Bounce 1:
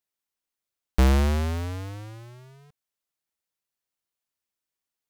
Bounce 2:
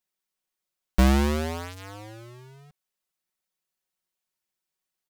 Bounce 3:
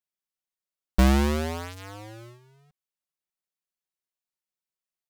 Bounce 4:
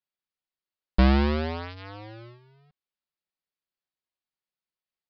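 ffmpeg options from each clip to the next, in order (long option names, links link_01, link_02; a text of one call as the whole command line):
ffmpeg -i in.wav -af "aecho=1:1:5.4:0.7" out.wav
ffmpeg -i in.wav -af "agate=range=-9dB:threshold=-44dB:ratio=16:detection=peak" out.wav
ffmpeg -i in.wav -af "aresample=11025,aresample=44100" out.wav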